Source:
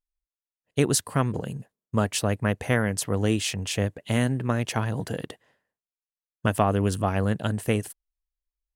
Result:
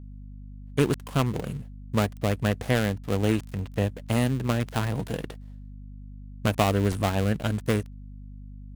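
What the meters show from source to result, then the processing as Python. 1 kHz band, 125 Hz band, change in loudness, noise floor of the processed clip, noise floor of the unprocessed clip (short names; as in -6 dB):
-1.5 dB, 0.0 dB, -1.0 dB, -42 dBFS, under -85 dBFS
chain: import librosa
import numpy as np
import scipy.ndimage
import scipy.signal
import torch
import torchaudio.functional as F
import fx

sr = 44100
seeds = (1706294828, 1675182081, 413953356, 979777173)

y = fx.dead_time(x, sr, dead_ms=0.22)
y = fx.add_hum(y, sr, base_hz=50, snr_db=14)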